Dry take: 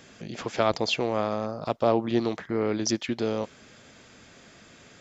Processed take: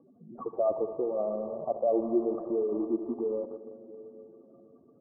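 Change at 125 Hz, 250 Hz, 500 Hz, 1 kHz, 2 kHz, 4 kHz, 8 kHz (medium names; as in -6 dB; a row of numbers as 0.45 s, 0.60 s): under -15 dB, -3.5 dB, -1.5 dB, -8.0 dB, under -40 dB, under -40 dB, no reading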